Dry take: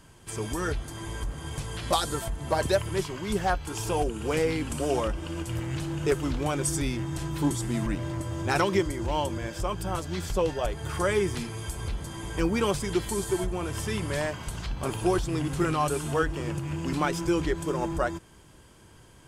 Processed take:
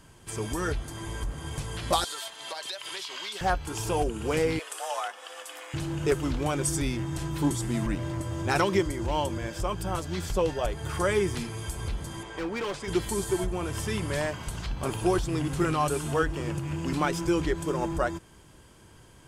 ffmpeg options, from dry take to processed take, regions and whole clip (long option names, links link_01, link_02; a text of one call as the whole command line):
ffmpeg -i in.wav -filter_complex "[0:a]asettb=1/sr,asplit=3[link_01][link_02][link_03];[link_01]atrim=end=2.044[link_04];[link_02]atrim=start=2.04:end=3.41,asetpts=PTS-STARTPTS,afade=type=in:duration=0.004:curve=qsin,afade=type=out:start_time=1.366:duration=0.004:curve=qsin,highpass=720,equalizer=frequency=3800:width=1.1:gain=14,acompressor=threshold=-32dB:ratio=12:attack=3.2:release=140:knee=1:detection=peak[link_05];[link_03]atrim=start=3.406[link_06];[link_04][link_05]acrossfade=duration=0.004:curve1=hsin:curve2=qsin[link_07];[link_07][link_06]acrossfade=duration=0.004:curve1=qsin:curve2=hsin,asettb=1/sr,asplit=3[link_08][link_09][link_10];[link_08]atrim=end=4.594[link_11];[link_09]atrim=start=4.59:end=5.74,asetpts=PTS-STARTPTS,afade=type=in:duration=0.004:curve=qsin,afade=type=out:start_time=1.146:duration=0.004:curve=qsin,highpass=660,afreqshift=180[link_12];[link_10]atrim=start=5.736[link_13];[link_11][link_12]acrossfade=duration=0.004:curve1=hsin:curve2=qsin[link_14];[link_14][link_13]acrossfade=duration=0.004:curve1=qsin:curve2=hsin,asettb=1/sr,asplit=3[link_15][link_16][link_17];[link_15]atrim=end=12.234[link_18];[link_16]atrim=start=12.23:end=12.88,asetpts=PTS-STARTPTS,afade=type=in:duration=0.004:curve=qsin,afade=type=out:start_time=0.646:duration=0.004:curve=qsin,lowpass=7300,bass=frequency=250:gain=-14,treble=frequency=4000:gain=-6,asoftclip=type=hard:threshold=-28dB[link_19];[link_17]atrim=start=12.876[link_20];[link_18][link_19]acrossfade=duration=0.004:curve1=hsin:curve2=qsin[link_21];[link_21][link_20]acrossfade=duration=0.004:curve1=qsin:curve2=hsin" out.wav